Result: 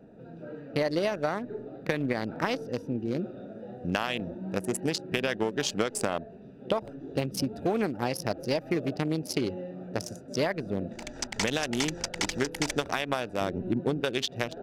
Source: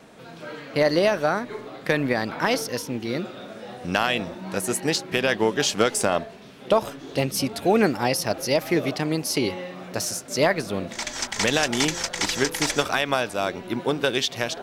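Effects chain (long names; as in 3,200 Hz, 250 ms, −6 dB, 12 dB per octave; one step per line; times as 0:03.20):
adaptive Wiener filter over 41 samples
0:13.41–0:14.01: low-shelf EQ 330 Hz +9.5 dB
downward compressor 6 to 1, threshold −24 dBFS, peak gain reduction 10 dB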